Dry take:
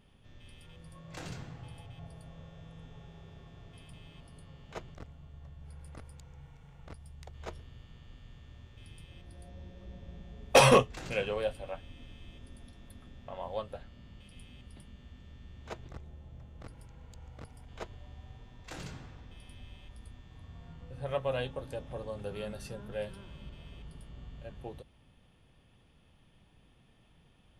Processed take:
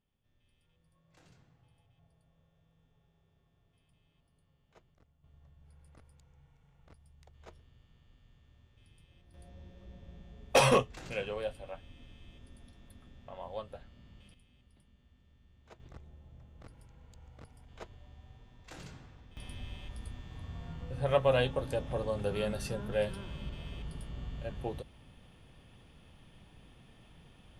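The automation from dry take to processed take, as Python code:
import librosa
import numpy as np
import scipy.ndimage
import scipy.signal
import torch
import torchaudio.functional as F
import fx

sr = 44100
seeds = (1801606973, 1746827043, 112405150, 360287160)

y = fx.gain(x, sr, db=fx.steps((0.0, -20.0), (5.24, -11.0), (9.34, -4.0), (14.34, -13.5), (15.8, -5.0), (19.37, 6.0)))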